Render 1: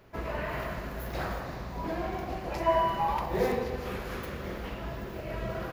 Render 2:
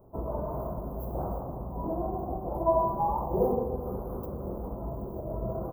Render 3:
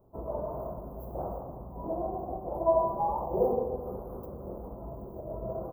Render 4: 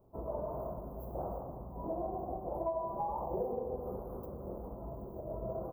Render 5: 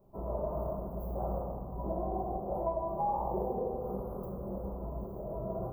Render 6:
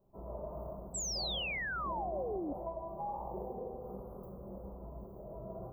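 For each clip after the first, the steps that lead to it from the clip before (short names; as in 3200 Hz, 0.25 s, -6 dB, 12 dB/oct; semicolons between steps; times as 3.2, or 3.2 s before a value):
inverse Chebyshev band-stop 1700–8700 Hz, stop band 40 dB; gain +2 dB
dynamic EQ 580 Hz, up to +8 dB, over -41 dBFS, Q 1; gain -6.5 dB
compressor 6:1, threshold -30 dBFS, peak gain reduction 10.5 dB; gain -2.5 dB
reverb RT60 0.95 s, pre-delay 5 ms, DRR 0 dB
painted sound fall, 0.94–2.53, 270–8000 Hz -30 dBFS; gain -8 dB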